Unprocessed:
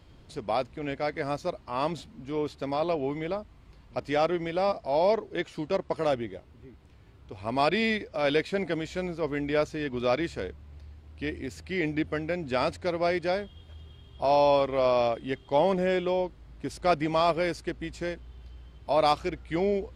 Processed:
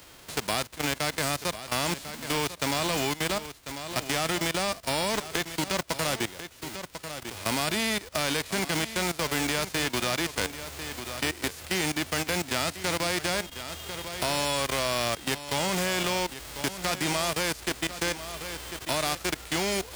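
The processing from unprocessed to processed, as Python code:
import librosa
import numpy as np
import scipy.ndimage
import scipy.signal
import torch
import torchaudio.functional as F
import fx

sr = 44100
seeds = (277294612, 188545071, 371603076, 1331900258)

y = fx.envelope_flatten(x, sr, power=0.3)
y = fx.level_steps(y, sr, step_db=17)
y = y + 10.0 ** (-13.5 / 20.0) * np.pad(y, (int(1045 * sr / 1000.0), 0))[:len(y)]
y = fx.band_squash(y, sr, depth_pct=40)
y = y * 10.0 ** (6.5 / 20.0)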